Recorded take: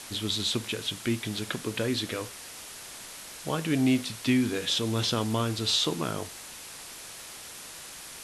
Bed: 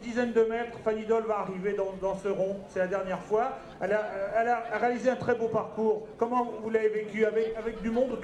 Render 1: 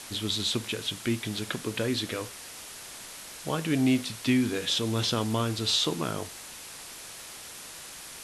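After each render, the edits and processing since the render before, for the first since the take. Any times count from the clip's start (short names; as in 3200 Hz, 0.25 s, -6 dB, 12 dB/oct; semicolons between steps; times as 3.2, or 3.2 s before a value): nothing audible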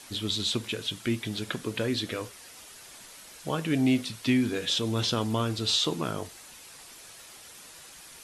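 denoiser 7 dB, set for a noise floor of -44 dBFS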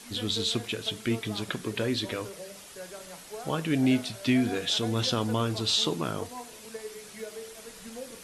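add bed -14.5 dB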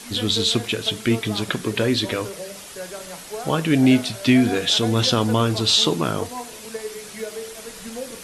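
gain +8.5 dB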